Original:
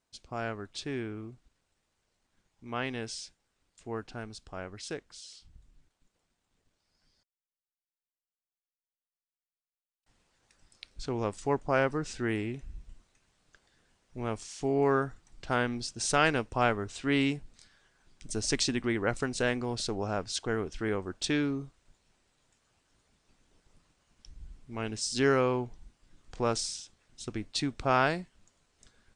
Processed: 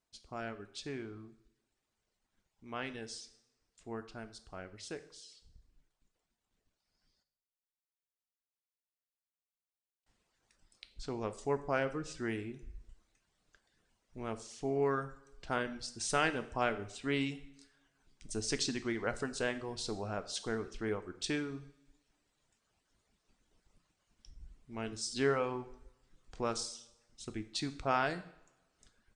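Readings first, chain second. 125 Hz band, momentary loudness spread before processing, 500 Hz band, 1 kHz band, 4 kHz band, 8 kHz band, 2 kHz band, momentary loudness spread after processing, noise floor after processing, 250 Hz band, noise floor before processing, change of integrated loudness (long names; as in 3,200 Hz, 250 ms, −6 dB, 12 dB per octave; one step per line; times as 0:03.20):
−8.0 dB, 16 LU, −5.5 dB, −5.5 dB, −5.5 dB, −5.5 dB, −6.0 dB, 17 LU, below −85 dBFS, −7.0 dB, below −85 dBFS, −6.0 dB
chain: reverb reduction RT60 0.67 s
coupled-rooms reverb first 0.59 s, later 1.5 s, DRR 9.5 dB
level −5.5 dB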